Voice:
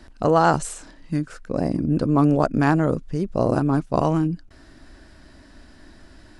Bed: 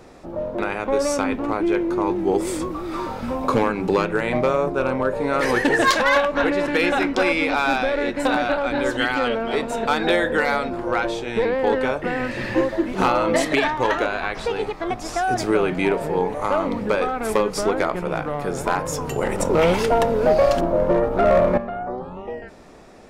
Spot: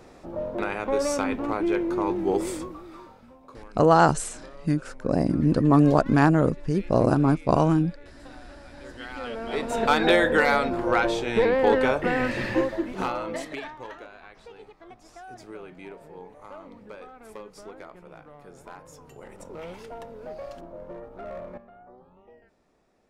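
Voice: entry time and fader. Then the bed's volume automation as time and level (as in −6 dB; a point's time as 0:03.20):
3.55 s, 0.0 dB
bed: 0:02.44 −4 dB
0:03.40 −27.5 dB
0:08.61 −27.5 dB
0:09.83 0 dB
0:12.29 0 dB
0:14.06 −22 dB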